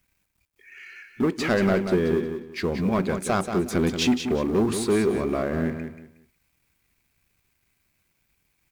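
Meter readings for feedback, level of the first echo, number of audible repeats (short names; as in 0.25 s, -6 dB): 25%, -8.0 dB, 3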